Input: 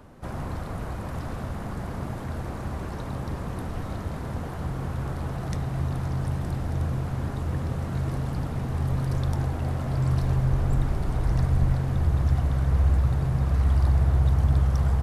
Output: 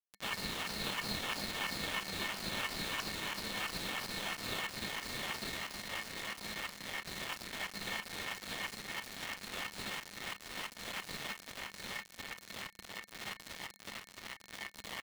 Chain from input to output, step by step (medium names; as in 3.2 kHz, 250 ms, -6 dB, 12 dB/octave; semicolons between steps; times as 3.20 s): comb filter that takes the minimum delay 0.37 ms; high-pass 60 Hz 24 dB/octave; bass shelf 170 Hz +5 dB; de-hum 259.5 Hz, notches 9; in parallel at +2 dB: gain riding 0.5 s; on the sum: peak limiter -14.5 dBFS, peak gain reduction 10.5 dB; LFO band-pass saw down 3 Hz 980–3500 Hz; bit crusher 7-bit; small resonant body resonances 200/2200 Hz, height 12 dB, ringing for 95 ms; ring modulator 2 kHz; on a send: delay 700 ms -10 dB; on the sum: trim +3 dB